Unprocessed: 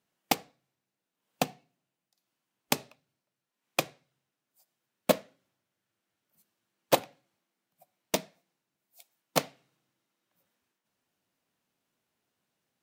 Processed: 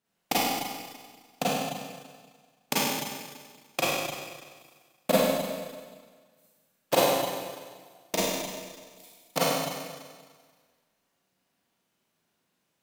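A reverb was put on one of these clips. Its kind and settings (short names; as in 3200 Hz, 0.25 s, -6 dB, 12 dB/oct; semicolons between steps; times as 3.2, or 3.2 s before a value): Schroeder reverb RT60 1.6 s, combs from 33 ms, DRR -9 dB; gain -4 dB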